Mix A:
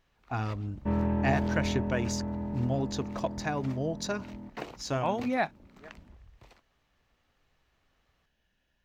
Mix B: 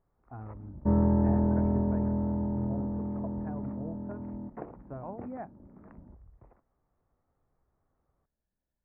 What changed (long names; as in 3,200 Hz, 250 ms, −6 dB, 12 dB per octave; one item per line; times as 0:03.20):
speech −10.0 dB
second sound +4.5 dB
master: add Gaussian smoothing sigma 7 samples